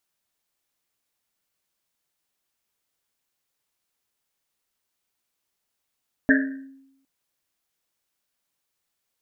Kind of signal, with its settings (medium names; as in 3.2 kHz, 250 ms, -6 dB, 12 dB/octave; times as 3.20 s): Risset drum length 0.76 s, pitch 270 Hz, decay 0.88 s, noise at 1.7 kHz, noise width 310 Hz, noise 35%